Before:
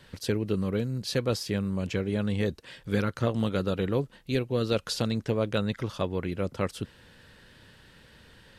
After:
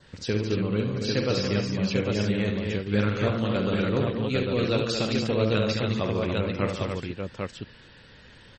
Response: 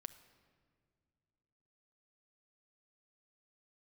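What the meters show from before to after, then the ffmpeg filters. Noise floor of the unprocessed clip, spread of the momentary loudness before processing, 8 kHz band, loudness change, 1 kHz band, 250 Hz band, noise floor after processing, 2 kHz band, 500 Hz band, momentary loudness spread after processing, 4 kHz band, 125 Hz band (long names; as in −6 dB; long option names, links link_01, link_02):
−56 dBFS, 4 LU, +0.5 dB, +3.0 dB, +3.5 dB, +3.5 dB, −51 dBFS, +5.5 dB, +3.5 dB, 7 LU, +4.5 dB, +3.5 dB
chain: -af "adynamicequalizer=threshold=0.00316:dfrequency=2500:dqfactor=2.9:tfrequency=2500:tqfactor=2.9:attack=5:release=100:ratio=0.375:range=2:mode=boostabove:tftype=bell,aecho=1:1:48|75|143|219|285|799:0.422|0.422|0.266|0.447|0.531|0.708" -ar 44100 -c:a libmp3lame -b:a 32k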